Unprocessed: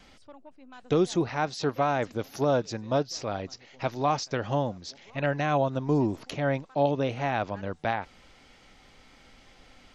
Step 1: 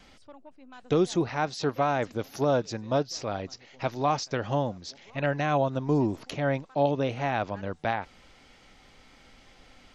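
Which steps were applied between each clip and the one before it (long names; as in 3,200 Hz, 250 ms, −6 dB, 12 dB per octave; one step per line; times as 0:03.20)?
no processing that can be heard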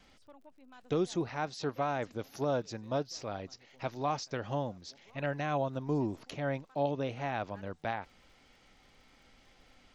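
surface crackle 53 per second −52 dBFS
level −7 dB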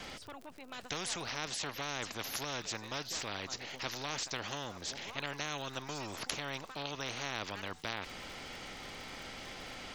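every bin compressed towards the loudest bin 4 to 1
level +7.5 dB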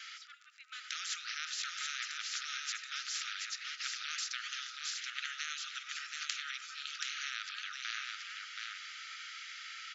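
linear-phase brick-wall band-pass 1,200–7,600 Hz
single-tap delay 728 ms −4 dB
on a send at −12 dB: convolution reverb RT60 0.55 s, pre-delay 50 ms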